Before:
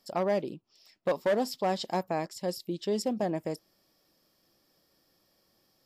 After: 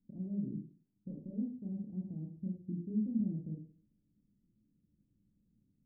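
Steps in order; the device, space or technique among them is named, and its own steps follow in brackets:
club heard from the street (brickwall limiter −28 dBFS, peak gain reduction 7.5 dB; low-pass filter 220 Hz 24 dB per octave; convolution reverb RT60 0.45 s, pre-delay 23 ms, DRR 0 dB)
level +2.5 dB

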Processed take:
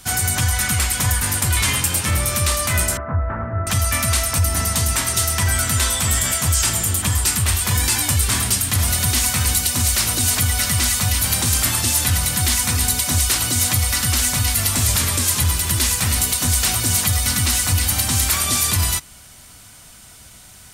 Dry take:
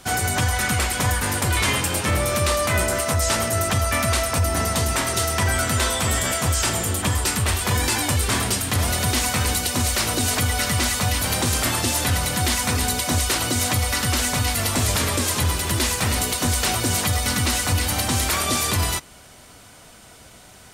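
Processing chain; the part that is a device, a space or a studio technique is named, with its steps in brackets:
smiley-face EQ (low-shelf EQ 160 Hz +4.5 dB; parametric band 460 Hz −7.5 dB 1.7 octaves; high-shelf EQ 5,900 Hz +8.5 dB)
0:02.97–0:03.67: Butterworth low-pass 1,600 Hz 36 dB per octave

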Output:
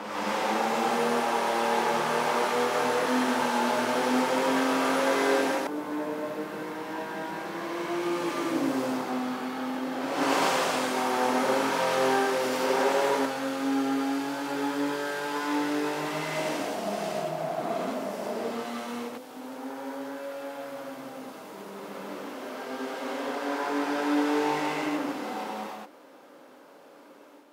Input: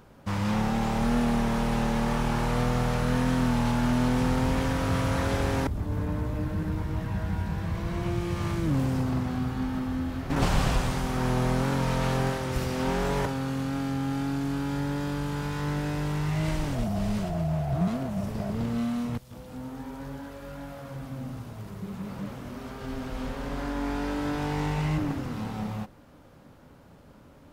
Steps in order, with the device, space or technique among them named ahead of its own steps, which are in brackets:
ghost voice (reversed playback; convolution reverb RT60 1.5 s, pre-delay 77 ms, DRR −3.5 dB; reversed playback; high-pass filter 310 Hz 24 dB per octave)

